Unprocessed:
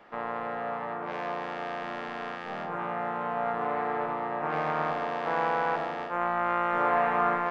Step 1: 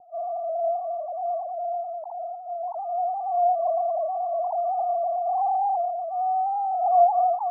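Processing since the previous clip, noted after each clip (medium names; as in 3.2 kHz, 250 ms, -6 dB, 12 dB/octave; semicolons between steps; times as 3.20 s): formants replaced by sine waves; steep low-pass 910 Hz 72 dB/octave; trim +6.5 dB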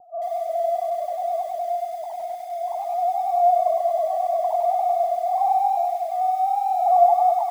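bit-crushed delay 98 ms, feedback 55%, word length 8-bit, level -5 dB; trim +2 dB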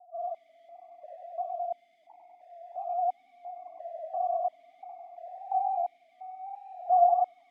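stepped vowel filter 2.9 Hz; trim -5 dB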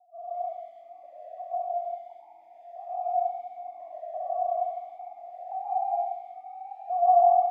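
plate-style reverb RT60 0.97 s, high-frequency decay 0.45×, pre-delay 115 ms, DRR -7 dB; trim -6 dB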